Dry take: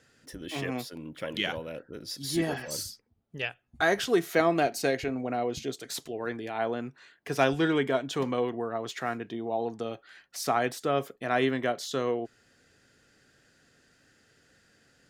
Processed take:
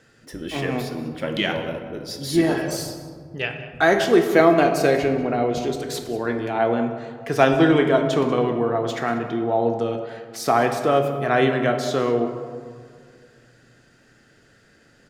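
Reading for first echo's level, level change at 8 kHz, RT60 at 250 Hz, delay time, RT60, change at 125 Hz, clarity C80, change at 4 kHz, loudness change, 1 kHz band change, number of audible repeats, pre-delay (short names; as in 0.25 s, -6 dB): -16.0 dB, +3.5 dB, 2.5 s, 0.191 s, 2.0 s, +10.5 dB, 8.0 dB, +5.0 dB, +9.0 dB, +8.5 dB, 1, 3 ms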